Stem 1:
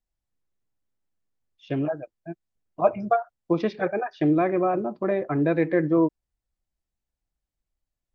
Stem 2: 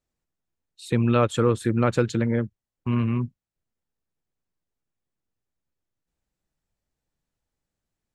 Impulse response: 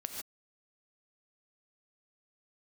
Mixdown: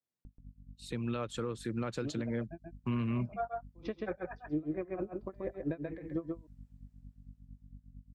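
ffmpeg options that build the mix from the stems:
-filter_complex "[0:a]aeval=exprs='val(0)+0.00891*(sin(2*PI*50*n/s)+sin(2*PI*2*50*n/s)/2+sin(2*PI*3*50*n/s)/3+sin(2*PI*4*50*n/s)/4+sin(2*PI*5*50*n/s)/5)':c=same,aeval=exprs='val(0)*pow(10,-39*(0.5-0.5*cos(2*PI*4.4*n/s))/20)':c=same,adelay=250,volume=0.596,asplit=2[s0][s1];[s1]volume=0.596[s2];[1:a]adynamicequalizer=threshold=0.00398:dfrequency=4700:dqfactor=1.2:tfrequency=4700:tqfactor=1.2:attack=5:release=100:ratio=0.375:range=3:mode=boostabove:tftype=bell,highpass=f=110:w=0.5412,highpass=f=110:w=1.3066,dynaudnorm=f=480:g=7:m=4.22,volume=0.266[s3];[s2]aecho=0:1:133:1[s4];[s0][s3][s4]amix=inputs=3:normalize=0,alimiter=level_in=1.19:limit=0.0631:level=0:latency=1:release=336,volume=0.841"

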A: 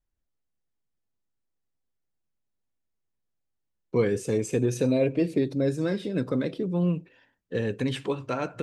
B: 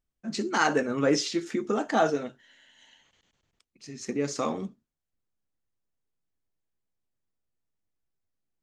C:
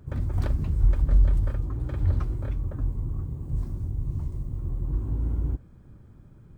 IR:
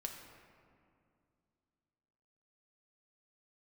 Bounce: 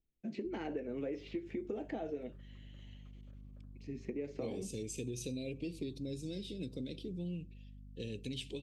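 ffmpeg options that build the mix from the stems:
-filter_complex "[0:a]aeval=exprs='val(0)+0.0112*(sin(2*PI*50*n/s)+sin(2*PI*2*50*n/s)/2+sin(2*PI*3*50*n/s)/3+sin(2*PI*4*50*n/s)/4+sin(2*PI*5*50*n/s)/5)':c=same,highshelf=f=2300:t=q:w=1.5:g=10.5,adelay=450,volume=0.251[s0];[1:a]acrossover=split=420|2600[s1][s2][s3];[s1]acompressor=threshold=0.01:ratio=4[s4];[s2]acompressor=threshold=0.0447:ratio=4[s5];[s3]acompressor=threshold=0.00112:ratio=4[s6];[s4][s5][s6]amix=inputs=3:normalize=0,bass=f=250:g=-4,treble=f=4000:g=-15,volume=1.41[s7];[2:a]highpass=130,equalizer=f=900:t=o:w=0.22:g=-7.5,acompressor=threshold=0.00562:ratio=5,adelay=850,volume=0.119[s8];[s0][s7]amix=inputs=2:normalize=0,firequalizer=gain_entry='entry(350,0);entry(1200,-26);entry(2300,-4)':delay=0.05:min_phase=1,acompressor=threshold=0.0141:ratio=4,volume=1[s9];[s8][s9]amix=inputs=2:normalize=0"

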